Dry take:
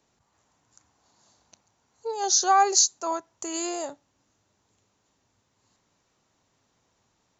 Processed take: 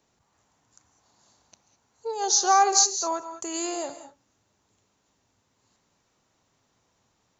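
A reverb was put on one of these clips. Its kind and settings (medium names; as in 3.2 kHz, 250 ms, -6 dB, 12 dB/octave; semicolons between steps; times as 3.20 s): gated-style reverb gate 230 ms rising, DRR 10 dB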